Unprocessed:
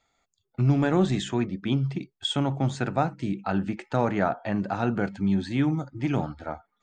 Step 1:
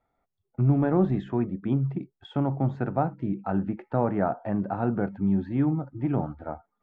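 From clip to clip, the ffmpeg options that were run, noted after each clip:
ffmpeg -i in.wav -af "lowpass=1100" out.wav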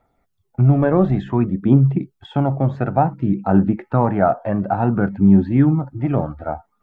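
ffmpeg -i in.wav -af "aphaser=in_gain=1:out_gain=1:delay=1.9:decay=0.41:speed=0.56:type=triangular,volume=8dB" out.wav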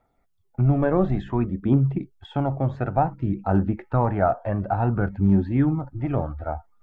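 ffmpeg -i in.wav -af "asubboost=boost=10.5:cutoff=61,volume=-4dB" out.wav

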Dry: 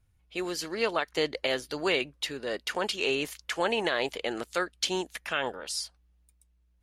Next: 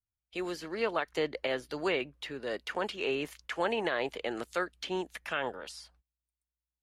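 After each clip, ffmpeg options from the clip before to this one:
ffmpeg -i in.wav -filter_complex "[0:a]agate=range=-25dB:threshold=-53dB:ratio=16:detection=peak,acrossover=split=220|2800[link_01][link_02][link_03];[link_03]acompressor=threshold=-45dB:ratio=10[link_04];[link_01][link_02][link_04]amix=inputs=3:normalize=0,volume=-2.5dB" out.wav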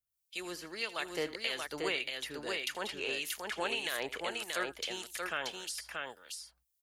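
ffmpeg -i in.wav -filter_complex "[0:a]acrossover=split=2000[link_01][link_02];[link_01]aeval=exprs='val(0)*(1-0.7/2+0.7/2*cos(2*PI*1.7*n/s))':channel_layout=same[link_03];[link_02]aeval=exprs='val(0)*(1-0.7/2-0.7/2*cos(2*PI*1.7*n/s))':channel_layout=same[link_04];[link_03][link_04]amix=inputs=2:normalize=0,crystalizer=i=6.5:c=0,asplit=2[link_05][link_06];[link_06]aecho=0:1:80|631:0.126|0.668[link_07];[link_05][link_07]amix=inputs=2:normalize=0,volume=-5.5dB" out.wav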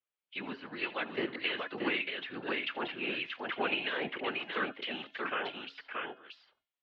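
ffmpeg -i in.wav -af "afftfilt=real='hypot(re,im)*cos(2*PI*random(0))':imag='hypot(re,im)*sin(2*PI*random(1))':win_size=512:overlap=0.75,bandreject=frequency=373.6:width_type=h:width=4,bandreject=frequency=747.2:width_type=h:width=4,bandreject=frequency=1120.8:width_type=h:width=4,bandreject=frequency=1494.4:width_type=h:width=4,bandreject=frequency=1868:width_type=h:width=4,bandreject=frequency=2241.6:width_type=h:width=4,bandreject=frequency=2615.2:width_type=h:width=4,bandreject=frequency=2988.8:width_type=h:width=4,bandreject=frequency=3362.4:width_type=h:width=4,bandreject=frequency=3736:width_type=h:width=4,bandreject=frequency=4109.6:width_type=h:width=4,bandreject=frequency=4483.2:width_type=h:width=4,bandreject=frequency=4856.8:width_type=h:width=4,bandreject=frequency=5230.4:width_type=h:width=4,bandreject=frequency=5604:width_type=h:width=4,bandreject=frequency=5977.6:width_type=h:width=4,bandreject=frequency=6351.2:width_type=h:width=4,bandreject=frequency=6724.8:width_type=h:width=4,bandreject=frequency=7098.4:width_type=h:width=4,bandreject=frequency=7472:width_type=h:width=4,bandreject=frequency=7845.6:width_type=h:width=4,bandreject=frequency=8219.2:width_type=h:width=4,bandreject=frequency=8592.8:width_type=h:width=4,bandreject=frequency=8966.4:width_type=h:width=4,bandreject=frequency=9340:width_type=h:width=4,bandreject=frequency=9713.6:width_type=h:width=4,bandreject=frequency=10087.2:width_type=h:width=4,highpass=frequency=290:width_type=q:width=0.5412,highpass=frequency=290:width_type=q:width=1.307,lowpass=frequency=3400:width_type=q:width=0.5176,lowpass=frequency=3400:width_type=q:width=0.7071,lowpass=frequency=3400:width_type=q:width=1.932,afreqshift=-98,volume=8.5dB" out.wav

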